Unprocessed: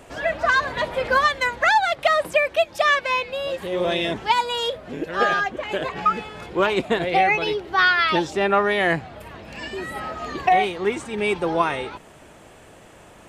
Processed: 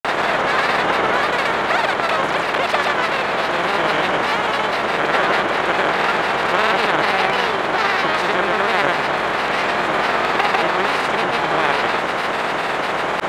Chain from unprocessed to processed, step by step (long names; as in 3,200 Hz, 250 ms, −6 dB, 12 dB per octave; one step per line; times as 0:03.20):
compressor on every frequency bin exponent 0.2
granular cloud, grains 20 per second, pitch spread up and down by 3 semitones
level −7.5 dB